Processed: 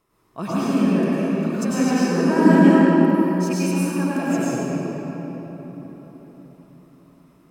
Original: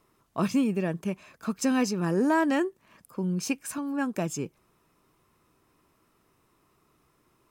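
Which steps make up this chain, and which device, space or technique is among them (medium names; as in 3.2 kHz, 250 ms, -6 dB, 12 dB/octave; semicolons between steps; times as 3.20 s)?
cathedral (reverberation RT60 4.5 s, pre-delay 90 ms, DRR -10.5 dB); 2.46–3.22 s: peaking EQ 210 Hz +9 dB 0.81 oct; trim -3.5 dB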